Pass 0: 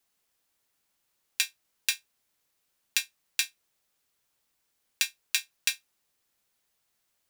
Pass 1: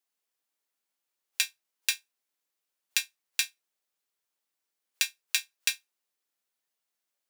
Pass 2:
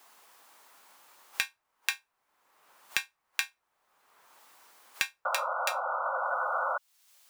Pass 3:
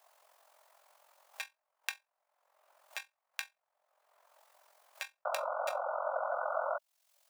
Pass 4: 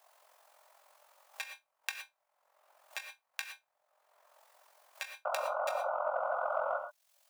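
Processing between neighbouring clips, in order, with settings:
high-pass filter 250 Hz; noise reduction from a noise print of the clip's start 9 dB
parametric band 1,000 Hz +13.5 dB 1.5 octaves; sound drawn into the spectrogram noise, 0:05.25–0:06.78, 500–1,500 Hz −26 dBFS; multiband upward and downward compressor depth 100%; level −6 dB
amplitude modulation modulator 44 Hz, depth 50%; four-pole ladder high-pass 560 Hz, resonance 70%; level +4.5 dB
in parallel at −7 dB: soft clipping −25 dBFS, distortion −19 dB; on the sum: reverb whose tail is shaped and stops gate 140 ms rising, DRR 6.5 dB; level −2.5 dB

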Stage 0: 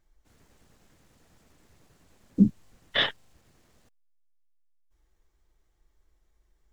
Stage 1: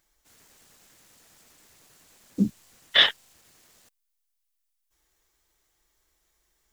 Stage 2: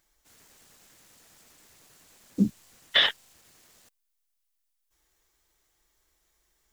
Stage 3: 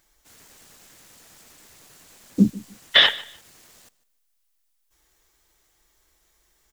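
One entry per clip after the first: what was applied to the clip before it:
spectral tilt +3 dB per octave; level +3 dB
brickwall limiter −9.5 dBFS, peak gain reduction 6.5 dB
repeating echo 150 ms, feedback 23%, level −20 dB; level +6.5 dB

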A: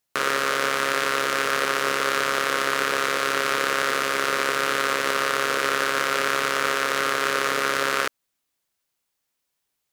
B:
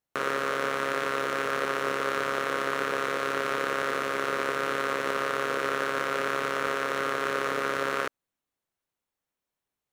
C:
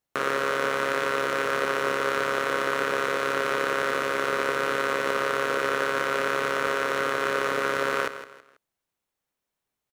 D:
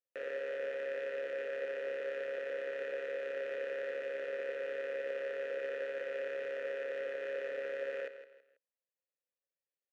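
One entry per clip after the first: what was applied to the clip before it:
high-shelf EQ 2,000 Hz −11 dB; notch filter 4,800 Hz, Q 15; level −2 dB
repeating echo 163 ms, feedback 33%, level −12.5 dB; level +2.5 dB
formant filter e; in parallel at −6.5 dB: soft clipping −32 dBFS, distortion −15 dB; on the sum: level −7.5 dB

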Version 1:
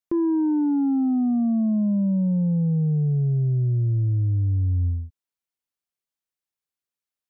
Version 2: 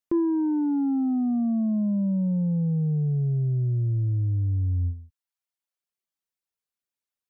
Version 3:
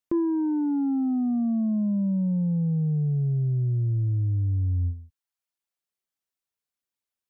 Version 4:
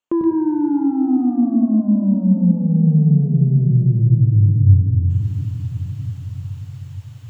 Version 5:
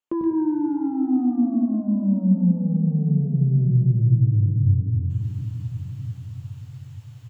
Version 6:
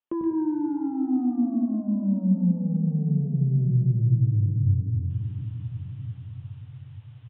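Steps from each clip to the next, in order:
reverb reduction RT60 0.74 s
dynamic equaliser 520 Hz, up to −3 dB, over −38 dBFS, Q 1.4
reversed playback; upward compression, threshold −33 dBFS; reversed playback; convolution reverb RT60 3.5 s, pre-delay 95 ms, DRR 3.5 dB; level −1 dB
double-tracking delay 16 ms −9 dB; level −5.5 dB
downsampling to 8,000 Hz; level −3.5 dB

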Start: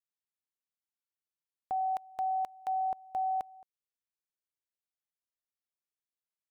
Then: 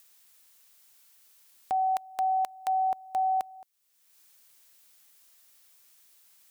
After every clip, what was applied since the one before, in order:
spectral tilt +2.5 dB per octave
in parallel at 0 dB: upward compression, threshold −39 dBFS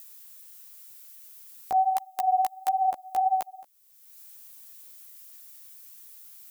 high-shelf EQ 8,600 Hz +12 dB
multi-voice chorus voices 2, 1.4 Hz, delay 14 ms, depth 3 ms
level +5.5 dB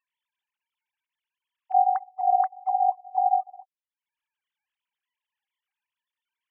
three sine waves on the formant tracks
level +2 dB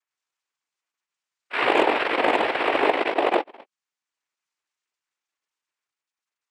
delay with pitch and tempo change per echo 99 ms, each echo +2 semitones, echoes 3
harmonic generator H 6 −28 dB, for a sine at −7.5 dBFS
cochlear-implant simulation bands 4

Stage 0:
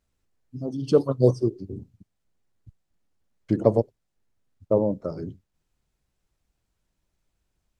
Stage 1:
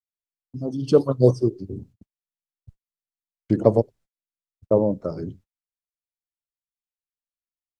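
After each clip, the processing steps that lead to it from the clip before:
noise gate −49 dBFS, range −40 dB
level +2.5 dB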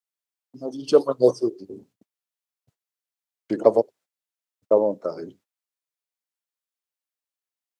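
high-pass filter 420 Hz 12 dB per octave
level +3 dB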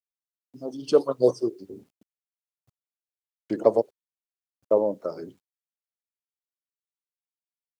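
low-shelf EQ 69 Hz +7 dB
bit reduction 11 bits
level −3 dB

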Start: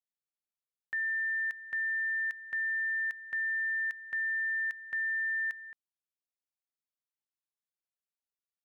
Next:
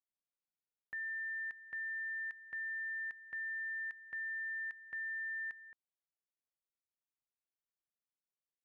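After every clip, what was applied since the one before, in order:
low-pass filter 1,300 Hz 6 dB per octave
level −4 dB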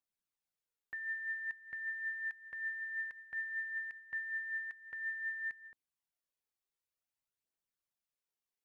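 phase shifter 0.53 Hz, delay 2.7 ms, feedback 39%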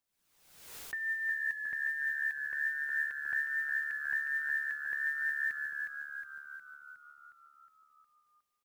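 echo with shifted repeats 362 ms, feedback 60%, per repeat −72 Hz, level −5 dB
noise that follows the level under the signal 30 dB
background raised ahead of every attack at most 58 dB per second
level +4.5 dB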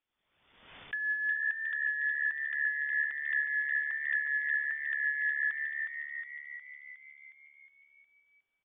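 voice inversion scrambler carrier 3,500 Hz
level +2.5 dB

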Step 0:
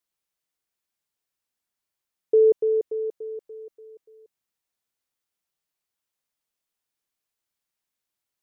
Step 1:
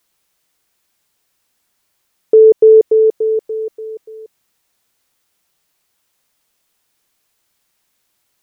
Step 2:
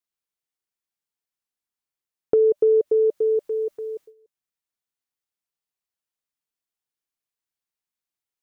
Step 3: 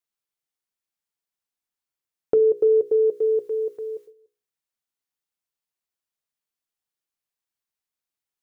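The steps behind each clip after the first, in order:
in parallel at −1 dB: downward compressor, threshold −27 dBFS, peak gain reduction 12 dB; on the sum: boost into a limiter +14 dB; level −1 dB
noise gate with hold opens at −26 dBFS; notch filter 590 Hz, Q 14; downward compressor 3 to 1, threshold −14 dBFS, peak gain reduction 7.5 dB; level −3.5 dB
mains-hum notches 60/120/180/240/300/360/420/480 Hz

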